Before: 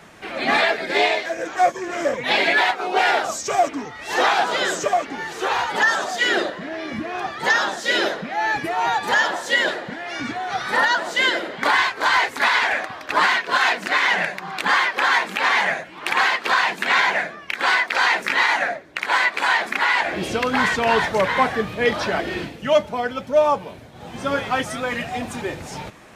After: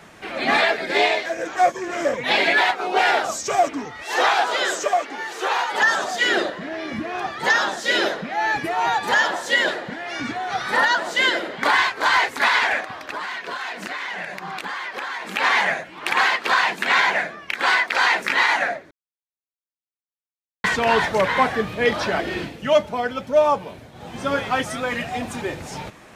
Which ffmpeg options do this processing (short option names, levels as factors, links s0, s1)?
-filter_complex "[0:a]asettb=1/sr,asplit=3[s0][s1][s2];[s0]atrim=end=4.024[s3];[s1]atrim=start=4.02:end=5.82,asetpts=PTS-STARTPTS,afade=t=in:d=0.004:c=qsin,afade=t=out:st=1.796:d=0.004:c=qsin,highpass=360[s4];[s2]atrim=start=5.816[s5];[s3][s4]acrossfade=d=0.004:c1=hsin:c2=qsin[s6];[s6][s5]acrossfade=d=0.004:c1=qsin:c2=hsin,asettb=1/sr,asplit=3[s7][s8][s9];[s7]atrim=end=12.804[s10];[s8]atrim=start=12.8:end=15.28,asetpts=PTS-STARTPTS,afade=t=in:d=0.004:c=qsin,afade=t=out:st=2.476:d=0.004:c=qsin,acompressor=threshold=0.0501:ratio=8:attack=3.2:release=140:knee=1:detection=peak[s11];[s9]atrim=start=15.276[s12];[s10][s11]acrossfade=d=0.004:c1=hsin:c2=qsin[s13];[s13][s12]acrossfade=d=0.004:c1=qsin:c2=hsin,asplit=3[s14][s15][s16];[s14]atrim=end=18.91,asetpts=PTS-STARTPTS,afade=t=out:st=18.906:d=0.004:c=hsin[s17];[s15]atrim=start=18.91:end=20.64,asetpts=PTS-STARTPTS,volume=0[s18];[s16]atrim=start=20.64,asetpts=PTS-STARTPTS,afade=t=in:d=0.004:c=hsin[s19];[s17][s18][s19]concat=n=3:v=0:a=1"